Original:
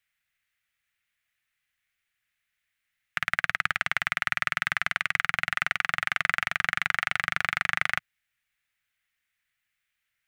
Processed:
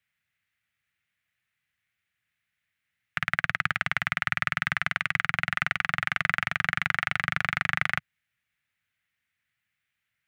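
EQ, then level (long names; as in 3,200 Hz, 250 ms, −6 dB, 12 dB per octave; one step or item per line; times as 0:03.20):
high-pass filter 100 Hz 12 dB per octave
bass and treble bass +10 dB, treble −5 dB
0.0 dB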